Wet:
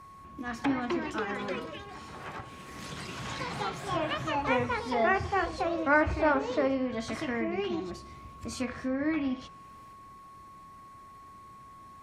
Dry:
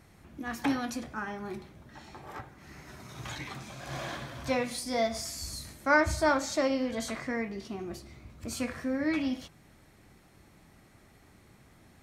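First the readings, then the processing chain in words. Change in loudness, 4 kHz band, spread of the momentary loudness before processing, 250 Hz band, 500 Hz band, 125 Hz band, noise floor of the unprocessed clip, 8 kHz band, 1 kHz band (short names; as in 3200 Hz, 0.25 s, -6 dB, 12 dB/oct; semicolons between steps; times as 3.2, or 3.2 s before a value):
+1.0 dB, -1.0 dB, 21 LU, +1.0 dB, +2.0 dB, +2.0 dB, -59 dBFS, -8.0 dB, +3.5 dB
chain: echoes that change speed 0.387 s, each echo +4 st, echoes 3; whine 1100 Hz -48 dBFS; treble ducked by the level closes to 2400 Hz, closed at -26 dBFS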